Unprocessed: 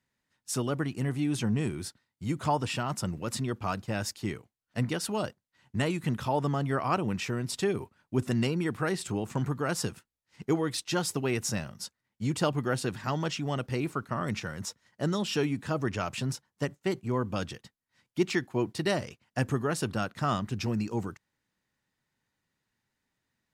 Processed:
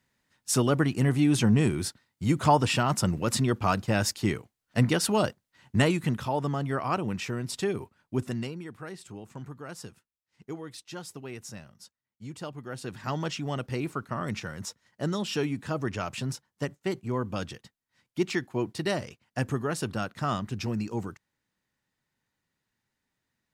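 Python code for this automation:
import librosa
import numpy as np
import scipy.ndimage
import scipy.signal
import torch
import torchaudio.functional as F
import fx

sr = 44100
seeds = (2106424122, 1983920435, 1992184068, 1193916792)

y = fx.gain(x, sr, db=fx.line((5.8, 6.5), (6.27, -0.5), (8.16, -0.5), (8.66, -11.0), (12.63, -11.0), (13.1, -0.5)))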